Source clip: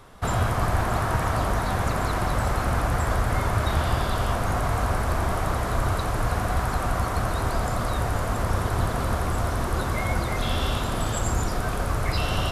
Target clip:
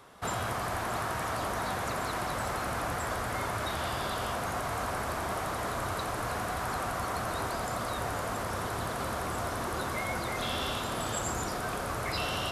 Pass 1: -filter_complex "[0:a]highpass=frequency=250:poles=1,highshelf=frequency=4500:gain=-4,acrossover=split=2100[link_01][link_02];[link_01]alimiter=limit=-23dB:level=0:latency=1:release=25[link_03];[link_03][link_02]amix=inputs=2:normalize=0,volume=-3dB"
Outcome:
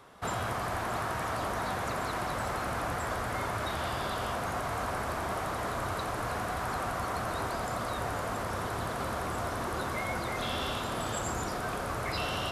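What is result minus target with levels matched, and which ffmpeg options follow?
8,000 Hz band −2.5 dB
-filter_complex "[0:a]highpass=frequency=250:poles=1,acrossover=split=2100[link_01][link_02];[link_01]alimiter=limit=-23dB:level=0:latency=1:release=25[link_03];[link_03][link_02]amix=inputs=2:normalize=0,volume=-3dB"

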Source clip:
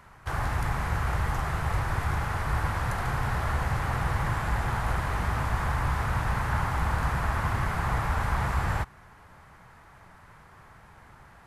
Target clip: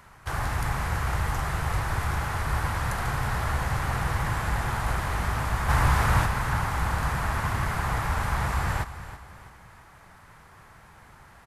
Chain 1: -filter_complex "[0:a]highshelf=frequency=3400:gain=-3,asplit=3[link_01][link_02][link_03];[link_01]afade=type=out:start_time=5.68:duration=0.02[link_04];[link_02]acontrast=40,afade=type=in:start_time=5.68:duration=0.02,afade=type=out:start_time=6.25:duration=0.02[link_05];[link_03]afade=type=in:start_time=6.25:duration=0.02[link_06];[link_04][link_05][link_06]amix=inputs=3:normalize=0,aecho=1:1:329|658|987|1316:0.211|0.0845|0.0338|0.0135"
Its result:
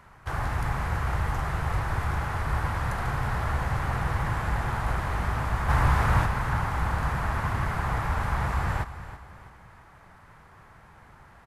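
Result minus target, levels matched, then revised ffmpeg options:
8,000 Hz band −7.0 dB
-filter_complex "[0:a]highshelf=frequency=3400:gain=6,asplit=3[link_01][link_02][link_03];[link_01]afade=type=out:start_time=5.68:duration=0.02[link_04];[link_02]acontrast=40,afade=type=in:start_time=5.68:duration=0.02,afade=type=out:start_time=6.25:duration=0.02[link_05];[link_03]afade=type=in:start_time=6.25:duration=0.02[link_06];[link_04][link_05][link_06]amix=inputs=3:normalize=0,aecho=1:1:329|658|987|1316:0.211|0.0845|0.0338|0.0135"

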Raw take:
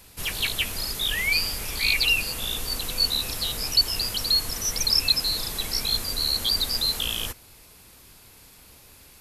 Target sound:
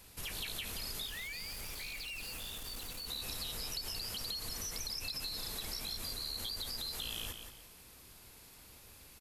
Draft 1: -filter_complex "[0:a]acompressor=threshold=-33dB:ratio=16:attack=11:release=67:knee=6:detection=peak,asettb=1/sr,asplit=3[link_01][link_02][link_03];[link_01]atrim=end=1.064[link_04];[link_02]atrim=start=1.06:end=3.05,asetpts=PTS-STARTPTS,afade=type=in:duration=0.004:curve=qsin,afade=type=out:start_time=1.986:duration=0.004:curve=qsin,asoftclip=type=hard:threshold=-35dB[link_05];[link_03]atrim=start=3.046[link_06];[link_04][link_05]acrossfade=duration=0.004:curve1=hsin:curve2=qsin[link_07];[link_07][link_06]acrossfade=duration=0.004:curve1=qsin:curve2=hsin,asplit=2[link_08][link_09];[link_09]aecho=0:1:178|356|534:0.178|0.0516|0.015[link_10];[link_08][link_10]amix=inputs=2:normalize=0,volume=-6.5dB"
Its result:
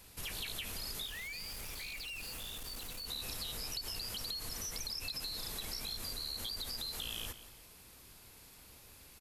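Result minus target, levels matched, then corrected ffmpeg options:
echo-to-direct −7 dB
-filter_complex "[0:a]acompressor=threshold=-33dB:ratio=16:attack=11:release=67:knee=6:detection=peak,asettb=1/sr,asplit=3[link_01][link_02][link_03];[link_01]atrim=end=1.064[link_04];[link_02]atrim=start=1.06:end=3.05,asetpts=PTS-STARTPTS,afade=type=in:duration=0.004:curve=qsin,afade=type=out:start_time=1.986:duration=0.004:curve=qsin,asoftclip=type=hard:threshold=-35dB[link_05];[link_03]atrim=start=3.046[link_06];[link_04][link_05]acrossfade=duration=0.004:curve1=hsin:curve2=qsin[link_07];[link_07][link_06]acrossfade=duration=0.004:curve1=qsin:curve2=hsin,asplit=2[link_08][link_09];[link_09]aecho=0:1:178|356|534:0.398|0.115|0.0335[link_10];[link_08][link_10]amix=inputs=2:normalize=0,volume=-6.5dB"

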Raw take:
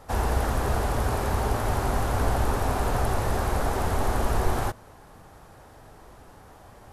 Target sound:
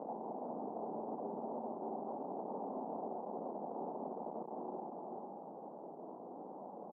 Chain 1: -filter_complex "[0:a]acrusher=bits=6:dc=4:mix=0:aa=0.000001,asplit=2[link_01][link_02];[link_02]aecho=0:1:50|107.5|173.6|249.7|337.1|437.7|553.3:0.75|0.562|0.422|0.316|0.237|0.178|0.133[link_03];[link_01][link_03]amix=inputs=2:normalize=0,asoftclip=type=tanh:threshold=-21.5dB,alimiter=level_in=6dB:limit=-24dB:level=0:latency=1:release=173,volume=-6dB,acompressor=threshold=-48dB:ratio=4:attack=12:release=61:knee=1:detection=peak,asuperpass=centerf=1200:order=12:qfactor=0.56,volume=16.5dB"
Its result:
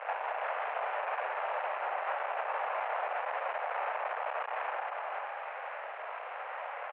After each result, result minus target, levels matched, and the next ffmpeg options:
downward compressor: peak gain reduction −8.5 dB; 500 Hz band −4.0 dB
-filter_complex "[0:a]acrusher=bits=6:dc=4:mix=0:aa=0.000001,asplit=2[link_01][link_02];[link_02]aecho=0:1:50|107.5|173.6|249.7|337.1|437.7|553.3:0.75|0.562|0.422|0.316|0.237|0.178|0.133[link_03];[link_01][link_03]amix=inputs=2:normalize=0,asoftclip=type=tanh:threshold=-21.5dB,alimiter=level_in=6dB:limit=-24dB:level=0:latency=1:release=173,volume=-6dB,acompressor=threshold=-59dB:ratio=4:attack=12:release=61:knee=1:detection=peak,asuperpass=centerf=1200:order=12:qfactor=0.56,volume=16.5dB"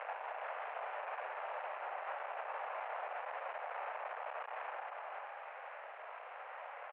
500 Hz band −4.0 dB
-filter_complex "[0:a]acrusher=bits=6:dc=4:mix=0:aa=0.000001,asplit=2[link_01][link_02];[link_02]aecho=0:1:50|107.5|173.6|249.7|337.1|437.7|553.3:0.75|0.562|0.422|0.316|0.237|0.178|0.133[link_03];[link_01][link_03]amix=inputs=2:normalize=0,asoftclip=type=tanh:threshold=-21.5dB,alimiter=level_in=6dB:limit=-24dB:level=0:latency=1:release=173,volume=-6dB,acompressor=threshold=-59dB:ratio=4:attack=12:release=61:knee=1:detection=peak,asuperpass=centerf=410:order=12:qfactor=0.56,volume=16.5dB"

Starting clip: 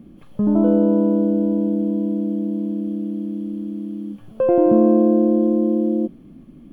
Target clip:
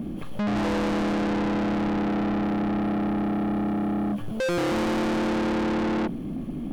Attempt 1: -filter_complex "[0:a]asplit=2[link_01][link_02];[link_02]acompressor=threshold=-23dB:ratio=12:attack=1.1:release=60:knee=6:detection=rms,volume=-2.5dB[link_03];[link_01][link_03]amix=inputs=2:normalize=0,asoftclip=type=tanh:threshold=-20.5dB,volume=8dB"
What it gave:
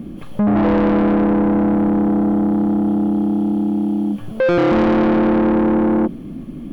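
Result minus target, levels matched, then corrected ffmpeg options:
soft clipping: distortion −4 dB
-filter_complex "[0:a]asplit=2[link_01][link_02];[link_02]acompressor=threshold=-23dB:ratio=12:attack=1.1:release=60:knee=6:detection=rms,volume=-2.5dB[link_03];[link_01][link_03]amix=inputs=2:normalize=0,asoftclip=type=tanh:threshold=-32dB,volume=8dB"

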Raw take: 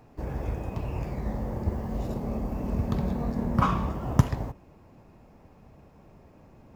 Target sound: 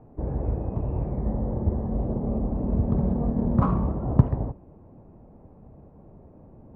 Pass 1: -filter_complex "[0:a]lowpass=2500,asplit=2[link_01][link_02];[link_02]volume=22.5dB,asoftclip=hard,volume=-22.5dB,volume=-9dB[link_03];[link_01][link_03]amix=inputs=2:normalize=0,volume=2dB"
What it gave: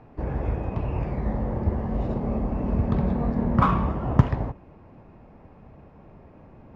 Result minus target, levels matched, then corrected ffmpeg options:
2,000 Hz band +13.0 dB
-filter_complex "[0:a]lowpass=700,asplit=2[link_01][link_02];[link_02]volume=22.5dB,asoftclip=hard,volume=-22.5dB,volume=-9dB[link_03];[link_01][link_03]amix=inputs=2:normalize=0,volume=2dB"

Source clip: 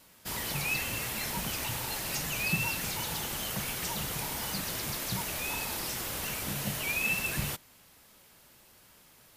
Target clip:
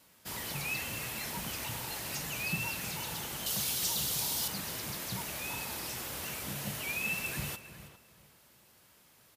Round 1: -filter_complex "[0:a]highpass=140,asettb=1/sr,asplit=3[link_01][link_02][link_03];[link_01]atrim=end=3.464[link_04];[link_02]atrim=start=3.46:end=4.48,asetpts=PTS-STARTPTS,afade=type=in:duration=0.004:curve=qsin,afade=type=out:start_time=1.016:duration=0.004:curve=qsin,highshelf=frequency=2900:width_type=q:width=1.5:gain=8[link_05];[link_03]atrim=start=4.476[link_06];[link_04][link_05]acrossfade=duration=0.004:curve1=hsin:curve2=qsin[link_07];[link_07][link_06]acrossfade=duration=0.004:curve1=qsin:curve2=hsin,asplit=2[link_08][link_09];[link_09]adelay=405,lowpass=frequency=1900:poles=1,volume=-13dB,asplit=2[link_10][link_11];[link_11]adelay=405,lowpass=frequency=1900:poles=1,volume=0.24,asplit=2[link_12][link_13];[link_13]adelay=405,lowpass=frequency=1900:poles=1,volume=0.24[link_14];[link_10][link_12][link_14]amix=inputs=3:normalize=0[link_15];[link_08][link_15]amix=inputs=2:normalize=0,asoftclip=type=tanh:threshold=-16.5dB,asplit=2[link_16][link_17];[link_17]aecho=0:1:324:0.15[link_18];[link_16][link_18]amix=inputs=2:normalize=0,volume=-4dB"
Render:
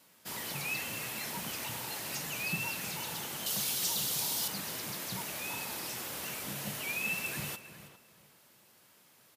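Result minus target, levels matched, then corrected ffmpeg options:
125 Hz band −3.0 dB
-filter_complex "[0:a]highpass=55,asettb=1/sr,asplit=3[link_01][link_02][link_03];[link_01]atrim=end=3.464[link_04];[link_02]atrim=start=3.46:end=4.48,asetpts=PTS-STARTPTS,afade=type=in:duration=0.004:curve=qsin,afade=type=out:start_time=1.016:duration=0.004:curve=qsin,highshelf=frequency=2900:width_type=q:width=1.5:gain=8[link_05];[link_03]atrim=start=4.476[link_06];[link_04][link_05]acrossfade=duration=0.004:curve1=hsin:curve2=qsin[link_07];[link_07][link_06]acrossfade=duration=0.004:curve1=qsin:curve2=hsin,asplit=2[link_08][link_09];[link_09]adelay=405,lowpass=frequency=1900:poles=1,volume=-13dB,asplit=2[link_10][link_11];[link_11]adelay=405,lowpass=frequency=1900:poles=1,volume=0.24,asplit=2[link_12][link_13];[link_13]adelay=405,lowpass=frequency=1900:poles=1,volume=0.24[link_14];[link_10][link_12][link_14]amix=inputs=3:normalize=0[link_15];[link_08][link_15]amix=inputs=2:normalize=0,asoftclip=type=tanh:threshold=-16.5dB,asplit=2[link_16][link_17];[link_17]aecho=0:1:324:0.15[link_18];[link_16][link_18]amix=inputs=2:normalize=0,volume=-4dB"

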